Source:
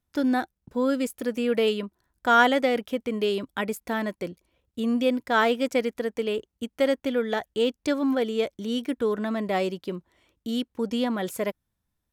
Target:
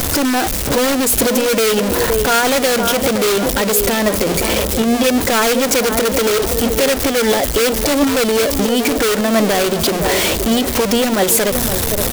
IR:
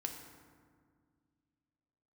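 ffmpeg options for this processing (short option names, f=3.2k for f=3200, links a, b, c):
-filter_complex "[0:a]aeval=exprs='val(0)+0.5*0.0891*sgn(val(0))':c=same,equalizer=f=480:w=1:g=7.5,bandreject=f=60:t=h:w=6,bandreject=f=120:t=h:w=6,bandreject=f=180:t=h:w=6,bandreject=f=240:t=h:w=6,bandreject=f=300:t=h:w=6,bandreject=f=360:t=h:w=6,asplit=2[a][b];[b]adelay=517,lowpass=f=1.7k:p=1,volume=-11dB,asplit=2[c][d];[d]adelay=517,lowpass=f=1.7k:p=1,volume=0.4,asplit=2[e][f];[f]adelay=517,lowpass=f=1.7k:p=1,volume=0.4,asplit=2[g][h];[h]adelay=517,lowpass=f=1.7k:p=1,volume=0.4[i];[a][c][e][g][i]amix=inputs=5:normalize=0,asplit=2[j][k];[k]aeval=exprs='(mod(3.76*val(0)+1,2)-1)/3.76':c=same,volume=-4.5dB[l];[j][l]amix=inputs=2:normalize=0,highshelf=f=2.8k:g=8,alimiter=limit=-7.5dB:level=0:latency=1:release=79,volume=2dB"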